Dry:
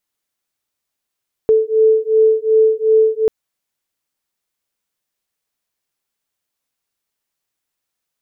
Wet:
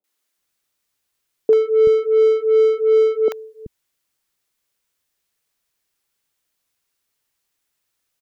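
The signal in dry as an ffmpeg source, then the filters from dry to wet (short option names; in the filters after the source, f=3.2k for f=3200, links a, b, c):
-f lavfi -i "aevalsrc='0.224*(sin(2*PI*438*t)+sin(2*PI*440.7*t))':d=1.79:s=44100"
-filter_complex "[0:a]asplit=2[a][b];[b]asoftclip=type=tanh:threshold=-24dB,volume=-3dB[c];[a][c]amix=inputs=2:normalize=0,acrossover=split=220|750[d][e][f];[f]adelay=40[g];[d]adelay=380[h];[h][e][g]amix=inputs=3:normalize=0"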